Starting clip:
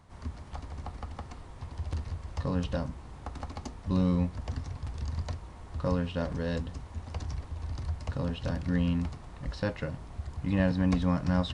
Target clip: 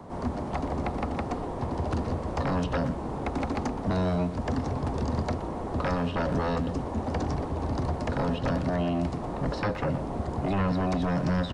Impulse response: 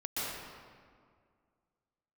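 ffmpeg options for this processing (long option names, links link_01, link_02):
-filter_complex "[0:a]acrossover=split=140|1800[link_01][link_02][link_03];[link_01]acompressor=threshold=-37dB:ratio=4[link_04];[link_02]acompressor=threshold=-41dB:ratio=4[link_05];[link_03]acompressor=threshold=-47dB:ratio=4[link_06];[link_04][link_05][link_06]amix=inputs=3:normalize=0,acrossover=split=180|900[link_07][link_08][link_09];[link_08]aeval=exprs='0.0335*sin(PI/2*4.47*val(0)/0.0335)':channel_layout=same[link_10];[link_07][link_10][link_09]amix=inputs=3:normalize=0,asplit=2[link_11][link_12];[link_12]adelay=120,highpass=300,lowpass=3400,asoftclip=type=hard:threshold=-31.5dB,volume=-10dB[link_13];[link_11][link_13]amix=inputs=2:normalize=0,volume=5dB"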